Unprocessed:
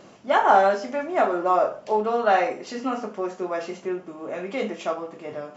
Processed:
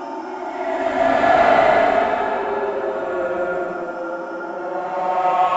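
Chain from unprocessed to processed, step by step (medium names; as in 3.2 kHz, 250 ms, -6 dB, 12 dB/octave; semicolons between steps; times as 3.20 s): chorus 0.74 Hz, delay 17 ms, depth 6.9 ms; two-band feedback delay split 610 Hz, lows 118 ms, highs 300 ms, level -12.5 dB; reverberation, pre-delay 3 ms, DRR 2 dB; Chebyshev shaper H 7 -21 dB, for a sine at -2 dBFS; Paulstretch 14×, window 0.10 s, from 1.11 s; trim +8 dB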